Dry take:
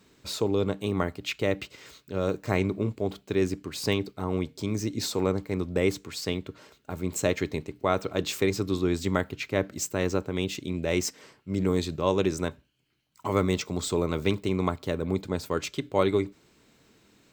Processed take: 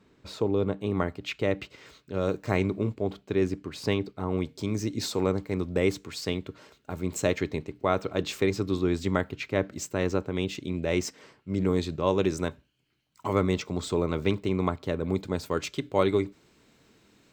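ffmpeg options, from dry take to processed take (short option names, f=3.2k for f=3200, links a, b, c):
-af "asetnsamples=n=441:p=0,asendcmd='0.91 lowpass f 3300;2.14 lowpass f 6900;2.94 lowpass f 2900;4.38 lowpass f 7900;7.38 lowpass f 4300;12.22 lowpass f 8300;13.33 lowpass f 3700;15.04 lowpass f 9300',lowpass=f=1.7k:p=1"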